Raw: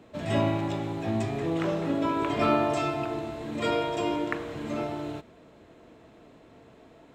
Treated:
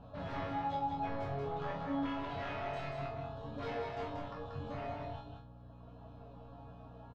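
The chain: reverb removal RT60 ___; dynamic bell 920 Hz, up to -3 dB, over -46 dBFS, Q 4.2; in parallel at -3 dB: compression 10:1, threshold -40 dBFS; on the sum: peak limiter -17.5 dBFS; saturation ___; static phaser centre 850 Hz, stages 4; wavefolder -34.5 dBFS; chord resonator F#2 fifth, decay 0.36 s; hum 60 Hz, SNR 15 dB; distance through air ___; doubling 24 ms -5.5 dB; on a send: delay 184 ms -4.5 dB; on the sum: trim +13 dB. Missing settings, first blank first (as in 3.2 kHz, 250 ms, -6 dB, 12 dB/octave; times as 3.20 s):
1.7 s, -28.5 dBFS, 290 m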